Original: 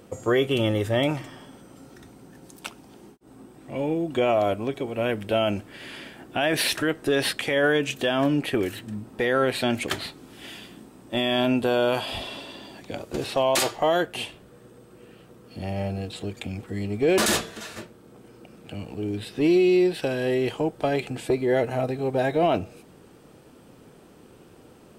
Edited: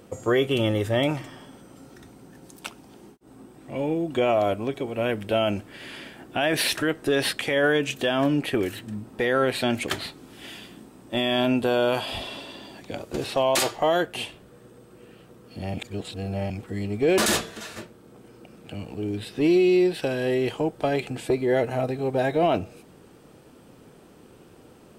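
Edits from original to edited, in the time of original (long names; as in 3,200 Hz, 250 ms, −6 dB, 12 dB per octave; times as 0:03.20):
0:15.74–0:16.50: reverse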